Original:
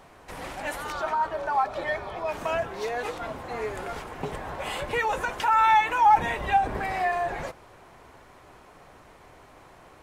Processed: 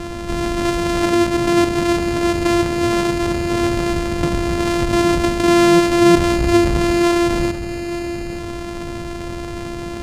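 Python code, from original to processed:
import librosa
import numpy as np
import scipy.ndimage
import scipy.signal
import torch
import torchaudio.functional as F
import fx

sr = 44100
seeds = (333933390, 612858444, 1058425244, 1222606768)

y = np.r_[np.sort(x[:len(x) // 128 * 128].reshape(-1, 128), axis=1).ravel(), x[len(x) // 128 * 128:]]
y = scipy.signal.sosfilt(scipy.signal.butter(2, 9200.0, 'lowpass', fs=sr, output='sos'), y)
y = fx.low_shelf(y, sr, hz=380.0, db=9.0)
y = y + 10.0 ** (-20.5 / 20.0) * np.pad(y, (int(877 * sr / 1000.0), 0))[:len(y)]
y = fx.env_flatten(y, sr, amount_pct=50)
y = y * librosa.db_to_amplitude(1.5)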